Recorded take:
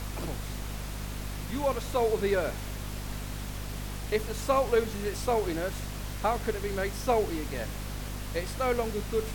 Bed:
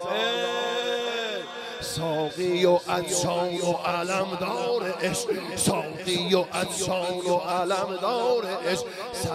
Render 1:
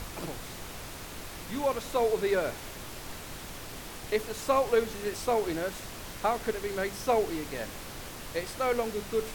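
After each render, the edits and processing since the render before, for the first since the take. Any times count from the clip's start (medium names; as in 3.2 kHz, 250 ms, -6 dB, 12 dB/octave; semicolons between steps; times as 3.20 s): hum notches 50/100/150/200/250 Hz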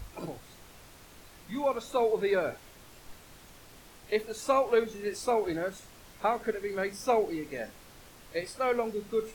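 noise print and reduce 11 dB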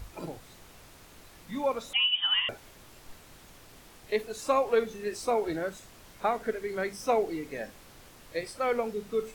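1.93–2.49 s: frequency inversion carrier 3.4 kHz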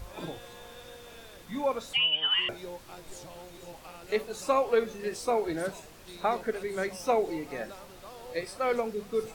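add bed -21.5 dB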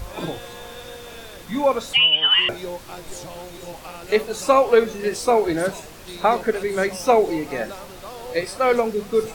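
trim +10 dB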